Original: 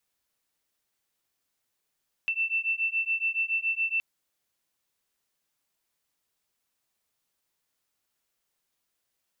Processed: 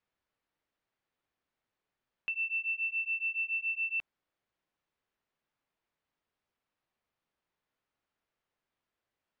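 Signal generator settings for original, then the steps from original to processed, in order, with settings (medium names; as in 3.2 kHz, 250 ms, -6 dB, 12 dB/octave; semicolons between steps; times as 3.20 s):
beating tones 2.67 kHz, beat 7.1 Hz, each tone -28.5 dBFS 1.72 s
Bessel low-pass 2 kHz, order 2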